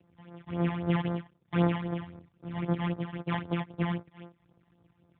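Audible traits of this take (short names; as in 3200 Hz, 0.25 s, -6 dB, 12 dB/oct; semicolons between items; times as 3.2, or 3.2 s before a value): a buzz of ramps at a fixed pitch in blocks of 256 samples; phasing stages 12, 3.8 Hz, lowest notch 410–3000 Hz; AMR-NB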